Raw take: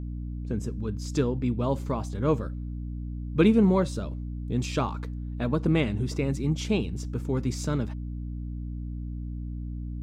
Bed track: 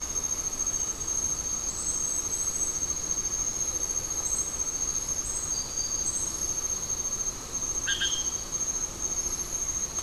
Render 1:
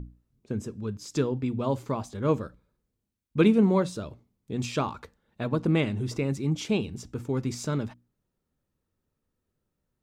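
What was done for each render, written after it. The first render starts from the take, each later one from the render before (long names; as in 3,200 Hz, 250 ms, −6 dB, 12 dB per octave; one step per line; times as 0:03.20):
mains-hum notches 60/120/180/240/300 Hz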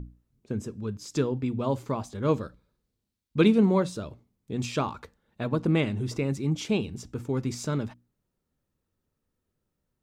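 0:02.23–0:03.66: parametric band 4,200 Hz +5.5 dB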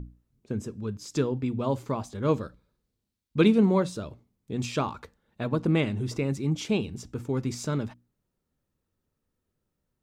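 no processing that can be heard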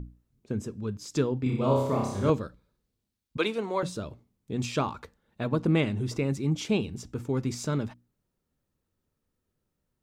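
0:01.43–0:02.30: flutter between parallel walls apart 5.3 metres, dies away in 0.84 s
0:03.37–0:03.83: high-pass filter 550 Hz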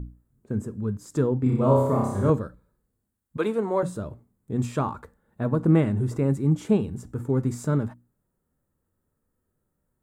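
harmonic and percussive parts rebalanced harmonic +6 dB
flat-topped bell 3,700 Hz −12.5 dB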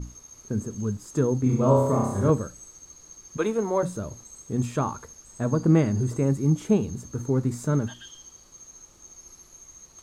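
mix in bed track −17.5 dB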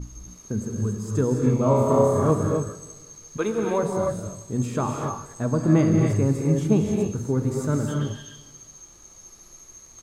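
repeating echo 176 ms, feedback 54%, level −20.5 dB
reverb whose tail is shaped and stops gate 310 ms rising, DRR 1 dB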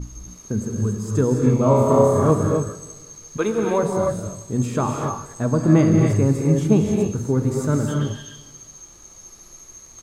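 level +3.5 dB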